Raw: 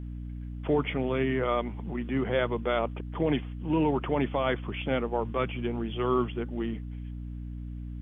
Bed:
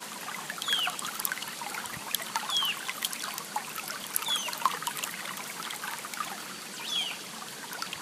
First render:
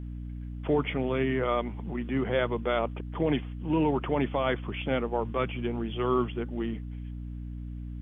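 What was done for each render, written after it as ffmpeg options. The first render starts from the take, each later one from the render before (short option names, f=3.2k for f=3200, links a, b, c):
-af anull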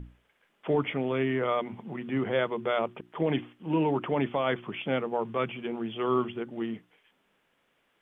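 -af "bandreject=f=60:t=h:w=6,bandreject=f=120:t=h:w=6,bandreject=f=180:t=h:w=6,bandreject=f=240:t=h:w=6,bandreject=f=300:t=h:w=6,bandreject=f=360:t=h:w=6"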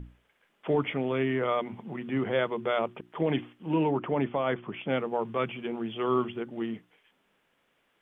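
-filter_complex "[0:a]asettb=1/sr,asplit=3[a][b][c];[a]atrim=end=3.884[d];[b]atrim=start=3.88:end=4.9,asetpts=PTS-STARTPTS,afade=t=in:d=0.004:c=qsin,afade=t=out:st=1.016:d=0.004:c=qsin,aemphasis=mode=reproduction:type=75kf[e];[c]atrim=start=4.896[f];[d][e]acrossfade=d=0.004:c1=hsin:c2=qsin[g];[g][f]acrossfade=d=0.004:c1=qsin:c2=hsin"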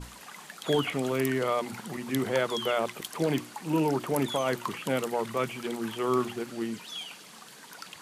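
-filter_complex "[1:a]volume=-8dB[a];[0:a][a]amix=inputs=2:normalize=0"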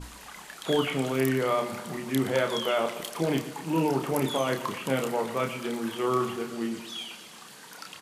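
-filter_complex "[0:a]asplit=2[a][b];[b]adelay=30,volume=-5.5dB[c];[a][c]amix=inputs=2:normalize=0,asplit=2[d][e];[e]aecho=0:1:120|240|360|480|600|720:0.211|0.118|0.0663|0.0371|0.0208|0.0116[f];[d][f]amix=inputs=2:normalize=0"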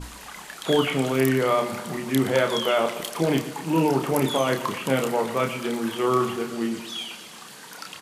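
-af "volume=4.5dB"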